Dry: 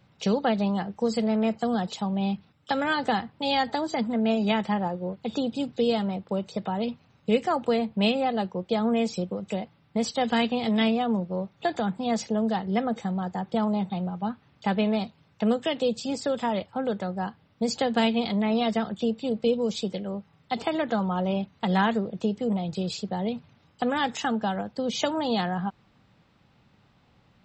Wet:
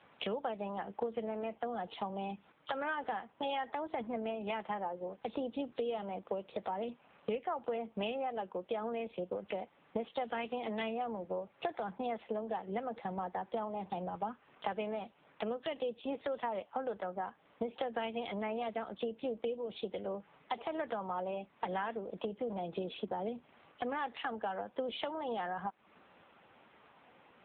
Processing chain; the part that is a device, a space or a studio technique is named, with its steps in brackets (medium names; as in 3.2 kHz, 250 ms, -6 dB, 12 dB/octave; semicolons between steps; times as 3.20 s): 22.56–23.95 s: dynamic bell 280 Hz, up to +5 dB, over -42 dBFS, Q 1.8; voicemail (band-pass 400–3100 Hz; compression 6:1, threshold -43 dBFS, peak gain reduction 20.5 dB; trim +8.5 dB; AMR-NB 6.7 kbps 8 kHz)